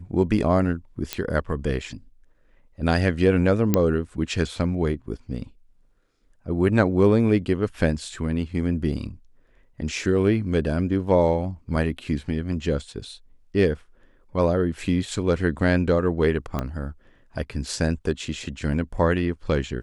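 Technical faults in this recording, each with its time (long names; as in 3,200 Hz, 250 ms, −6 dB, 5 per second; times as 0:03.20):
0:01.13: click −8 dBFS
0:03.74: click −5 dBFS
0:11.76: drop-out 3.1 ms
0:16.59: click −13 dBFS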